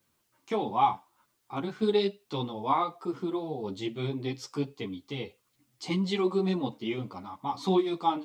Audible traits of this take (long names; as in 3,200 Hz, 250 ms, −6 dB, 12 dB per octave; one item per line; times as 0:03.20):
tremolo saw down 0.55 Hz, depth 30%
a quantiser's noise floor 12 bits, dither triangular
a shimmering, thickened sound